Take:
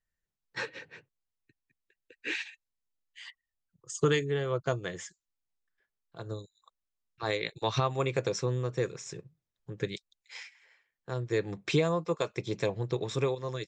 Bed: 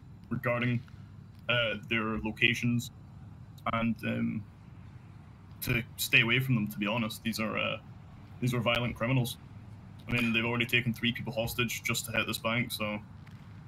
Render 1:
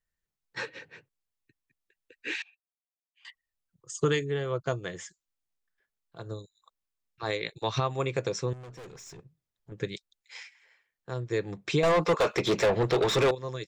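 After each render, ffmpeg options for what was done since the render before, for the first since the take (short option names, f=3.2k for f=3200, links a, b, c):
-filter_complex "[0:a]asettb=1/sr,asplit=3[a][b][c];[a]atrim=end=2.424[d];[b]atrim=start=2.42:end=3.25,asetpts=PTS-STARTPTS,afade=t=in:d=0.004:c=qsin,afade=t=out:st=0.826:d=0.004:c=qsin,asplit=3[e][f][g];[e]bandpass=f=730:t=q:w=8,volume=0dB[h];[f]bandpass=f=1.09k:t=q:w=8,volume=-6dB[i];[g]bandpass=f=2.44k:t=q:w=8,volume=-9dB[j];[h][i][j]amix=inputs=3:normalize=0[k];[c]atrim=start=3.246[l];[d][k]acrossfade=d=0.004:c1=hsin:c2=qsin[m];[m][l]acrossfade=d=0.004:c1=qsin:c2=hsin,asettb=1/sr,asplit=3[n][o][p];[n]atrim=end=8.534[q];[o]atrim=start=8.53:end=9.72,asetpts=PTS-STARTPTS,afade=t=in:d=0.004:c=qsin,afade=t=out:st=1.186:d=0.004:c=qsin,aeval=exprs='(tanh(141*val(0)+0.2)-tanh(0.2))/141':c=same[r];[p]atrim=start=9.716[s];[q][r]acrossfade=d=0.004:c1=hsin:c2=qsin[t];[t][s]acrossfade=d=0.004:c1=qsin:c2=hsin,asettb=1/sr,asplit=3[u][v][w];[u]atrim=end=11.834[x];[v]atrim=start=11.83:end=13.31,asetpts=PTS-STARTPTS,afade=t=in:d=0.004:c=qsin,afade=t=out:st=1.476:d=0.004:c=qsin,asplit=2[y][z];[z]highpass=f=720:p=1,volume=29dB,asoftclip=type=tanh:threshold=-15dB[aa];[y][aa]amix=inputs=2:normalize=0,lowpass=f=2.4k:p=1,volume=-6dB[ab];[w]atrim=start=13.306[ac];[x][ab]acrossfade=d=0.004:c1=hsin:c2=qsin[ad];[ad][ac]acrossfade=d=0.004:c1=qsin:c2=hsin"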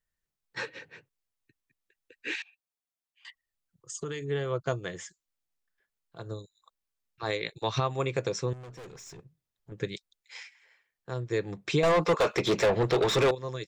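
-filter_complex "[0:a]asettb=1/sr,asplit=3[a][b][c];[a]atrim=end=2.354[d];[b]atrim=start=2.35:end=4.28,asetpts=PTS-STARTPTS,afade=t=in:d=0.004:c=qsin,afade=t=out:st=1.926:d=0.004:c=qsin,acompressor=threshold=-32dB:ratio=6:attack=3.2:release=140:knee=1:detection=peak[e];[c]atrim=start=4.276[f];[d][e]acrossfade=d=0.004:c1=hsin:c2=qsin[g];[g][f]acrossfade=d=0.004:c1=qsin:c2=hsin"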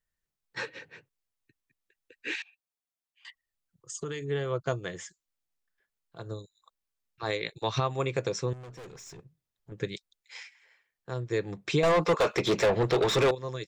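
-af anull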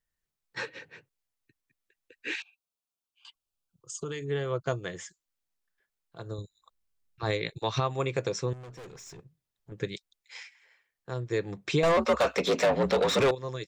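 -filter_complex "[0:a]asettb=1/sr,asplit=3[a][b][c];[a]atrim=end=2.404[d];[b]atrim=start=2.4:end=4.12,asetpts=PTS-STARTPTS,afade=t=in:d=0.004:c=qsin,afade=t=out:st=1.716:d=0.004:c=qsin,asuperstop=centerf=1900:order=4:qfactor=2.1[e];[c]atrim=start=4.116[f];[d][e]acrossfade=d=0.004:c1=hsin:c2=qsin[g];[g][f]acrossfade=d=0.004:c1=qsin:c2=hsin,asettb=1/sr,asplit=3[h][i][j];[h]atrim=end=6.384[k];[i]atrim=start=6.38:end=7.6,asetpts=PTS-STARTPTS,afade=t=in:d=0.004:c=qsin,afade=t=out:st=1.216:d=0.004:c=qsin,lowshelf=f=200:g=10.5[l];[j]atrim=start=7.596[m];[k][l]acrossfade=d=0.004:c1=hsin:c2=qsin[n];[n][m]acrossfade=d=0.004:c1=qsin:c2=hsin,asettb=1/sr,asplit=3[o][p][q];[o]atrim=end=11.974[r];[p]atrim=start=11.97:end=13.2,asetpts=PTS-STARTPTS,afade=t=in:d=0.004:c=qsin,afade=t=out:st=1.226:d=0.004:c=qsin,afreqshift=61[s];[q]atrim=start=13.196[t];[r][s]acrossfade=d=0.004:c1=hsin:c2=qsin[u];[u][t]acrossfade=d=0.004:c1=qsin:c2=hsin"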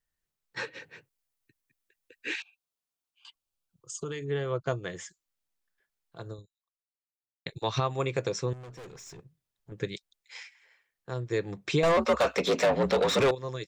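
-filter_complex "[0:a]asettb=1/sr,asplit=3[a][b][c];[a]atrim=end=0.744[d];[b]atrim=start=0.74:end=2.33,asetpts=PTS-STARTPTS,afade=t=in:d=0.004:c=qsin,afade=t=out:st=1.586:d=0.004:c=qsin,highshelf=f=7.7k:g=5.5[e];[c]atrim=start=2.326[f];[d][e]acrossfade=d=0.004:c1=hsin:c2=qsin[g];[g][f]acrossfade=d=0.004:c1=qsin:c2=hsin,asettb=1/sr,asplit=3[h][i][j];[h]atrim=end=4.094[k];[i]atrim=start=4.09:end=4.9,asetpts=PTS-STARTPTS,afade=t=in:d=0.004:c=qsin,afade=t=out:st=0.806:d=0.004:c=qsin,highshelf=f=6.7k:g=-7[l];[j]atrim=start=4.896[m];[k][l]acrossfade=d=0.004:c1=hsin:c2=qsin[n];[n][m]acrossfade=d=0.004:c1=qsin:c2=hsin,asplit=2[o][p];[o]atrim=end=7.46,asetpts=PTS-STARTPTS,afade=t=out:st=6.28:d=1.18:c=exp[q];[p]atrim=start=7.46,asetpts=PTS-STARTPTS,afade=t=in:d=0.004:c=hsin[r];[q][r]concat=n=2:v=0:a=1"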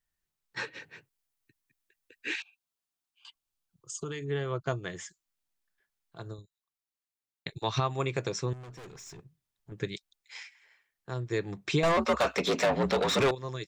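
-af "equalizer=f=510:t=o:w=0.33:g=-6"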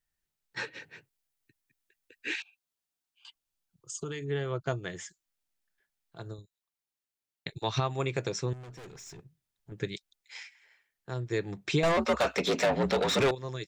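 -af "equalizer=f=1.1k:t=o:w=0.25:g=-4.5"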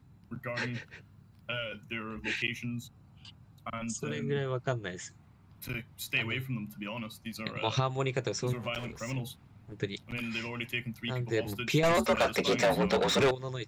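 -filter_complex "[1:a]volume=-7.5dB[a];[0:a][a]amix=inputs=2:normalize=0"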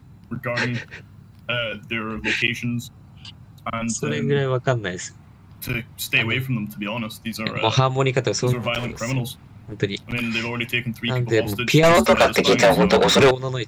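-af "volume=11.5dB"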